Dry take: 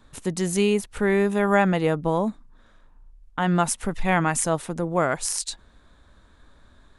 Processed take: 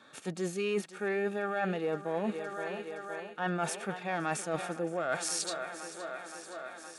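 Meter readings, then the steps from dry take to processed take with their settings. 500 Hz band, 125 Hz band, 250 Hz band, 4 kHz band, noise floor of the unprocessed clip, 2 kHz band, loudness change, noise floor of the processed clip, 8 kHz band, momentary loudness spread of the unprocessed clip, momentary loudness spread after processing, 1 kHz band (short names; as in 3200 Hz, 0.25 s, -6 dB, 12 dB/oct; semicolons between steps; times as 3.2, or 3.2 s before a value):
-9.0 dB, -14.0 dB, -12.5 dB, -6.5 dB, -56 dBFS, -8.0 dB, -11.5 dB, -49 dBFS, -9.5 dB, 9 LU, 9 LU, -9.5 dB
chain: limiter -12.5 dBFS, peak gain reduction 6.5 dB; HPF 74 Hz 24 dB/oct; high shelf 5700 Hz -6 dB; thinning echo 0.518 s, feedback 77%, high-pass 170 Hz, level -17.5 dB; soft clip -14.5 dBFS, distortion -21 dB; weighting filter A; harmonic-percussive split percussive -12 dB; notch comb 1000 Hz; reverse; compressor 6:1, threshold -38 dBFS, peak gain reduction 14.5 dB; reverse; gain +8.5 dB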